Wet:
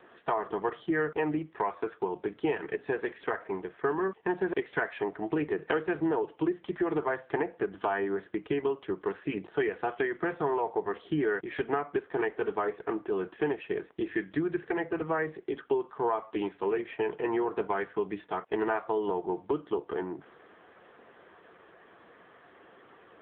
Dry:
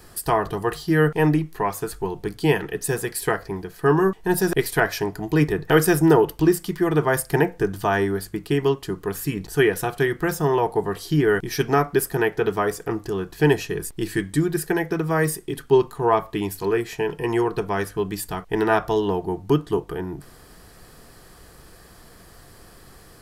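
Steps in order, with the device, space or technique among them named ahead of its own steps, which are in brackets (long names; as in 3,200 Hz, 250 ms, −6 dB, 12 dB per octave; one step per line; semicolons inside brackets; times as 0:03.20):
0:03.25–0:03.92: hum removal 315.8 Hz, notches 5
voicemail (band-pass filter 330–2,800 Hz; downward compressor 6 to 1, threshold −25 dBFS, peak gain reduction 12.5 dB; AMR narrowband 6.7 kbit/s 8,000 Hz)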